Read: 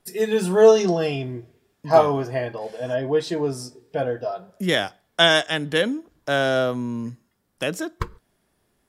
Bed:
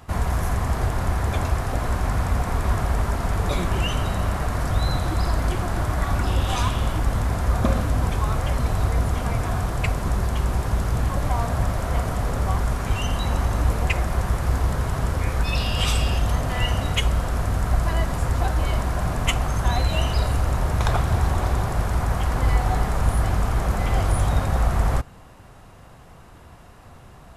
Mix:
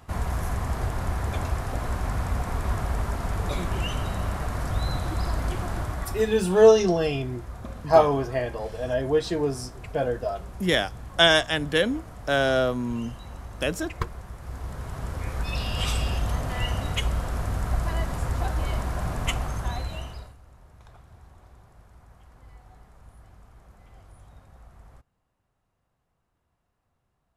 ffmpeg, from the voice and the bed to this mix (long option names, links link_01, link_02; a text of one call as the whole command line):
ffmpeg -i stem1.wav -i stem2.wav -filter_complex "[0:a]adelay=6000,volume=-1.5dB[link_01];[1:a]volume=7.5dB,afade=type=out:start_time=5.72:duration=0.66:silence=0.237137,afade=type=in:start_time=14.37:duration=1.41:silence=0.237137,afade=type=out:start_time=19.33:duration=1.02:silence=0.0562341[link_02];[link_01][link_02]amix=inputs=2:normalize=0" out.wav